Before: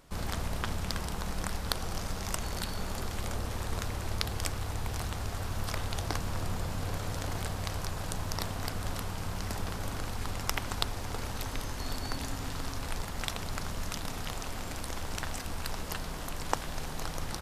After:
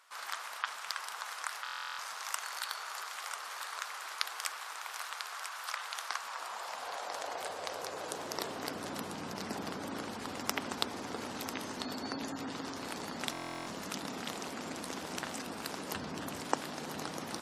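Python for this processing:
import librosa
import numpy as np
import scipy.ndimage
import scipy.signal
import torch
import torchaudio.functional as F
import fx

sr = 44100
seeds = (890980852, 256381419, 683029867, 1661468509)

p1 = fx.peak_eq(x, sr, hz=91.0, db=13.5, octaves=1.2, at=(15.95, 16.4))
p2 = p1 + fx.echo_single(p1, sr, ms=994, db=-8.5, dry=0)
p3 = fx.filter_sweep_highpass(p2, sr, from_hz=1200.0, to_hz=250.0, start_s=6.09, end_s=8.98, q=1.7)
p4 = fx.spec_gate(p3, sr, threshold_db=-25, keep='strong')
p5 = fx.buffer_glitch(p4, sr, at_s=(1.64, 13.32), block=1024, repeats=14)
y = F.gain(torch.from_numpy(p5), -2.0).numpy()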